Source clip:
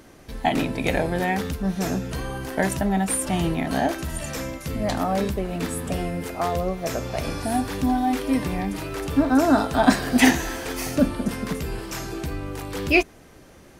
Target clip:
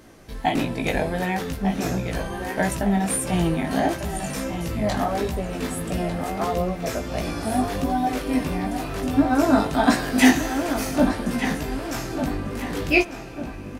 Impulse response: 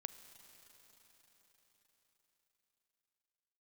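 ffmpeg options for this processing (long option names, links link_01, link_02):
-filter_complex "[0:a]asplit=2[link_01][link_02];[link_02]adelay=1198,lowpass=frequency=3400:poles=1,volume=-7.5dB,asplit=2[link_03][link_04];[link_04]adelay=1198,lowpass=frequency=3400:poles=1,volume=0.46,asplit=2[link_05][link_06];[link_06]adelay=1198,lowpass=frequency=3400:poles=1,volume=0.46,asplit=2[link_07][link_08];[link_08]adelay=1198,lowpass=frequency=3400:poles=1,volume=0.46,asplit=2[link_09][link_10];[link_10]adelay=1198,lowpass=frequency=3400:poles=1,volume=0.46[link_11];[link_01][link_03][link_05][link_07][link_09][link_11]amix=inputs=6:normalize=0,flanger=delay=17:depth=3.1:speed=1.5,asplit=2[link_12][link_13];[1:a]atrim=start_sample=2205[link_14];[link_13][link_14]afir=irnorm=-1:irlink=0,volume=-5dB[link_15];[link_12][link_15]amix=inputs=2:normalize=0"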